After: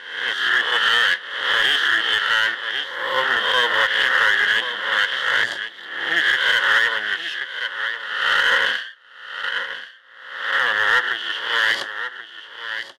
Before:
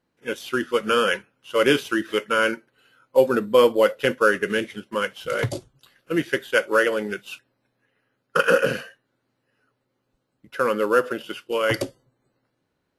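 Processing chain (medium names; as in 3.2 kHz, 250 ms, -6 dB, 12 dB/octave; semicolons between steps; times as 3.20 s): reverse spectral sustain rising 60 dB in 0.92 s; on a send: delay 1082 ms -12.5 dB; on the sum: half-wave rectifier; two resonant band-passes 2.4 kHz, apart 0.83 oct; in parallel at -4.5 dB: hard clipper -30.5 dBFS, distortion -9 dB; on the sum: loudness maximiser +20 dB; trim -6.5 dB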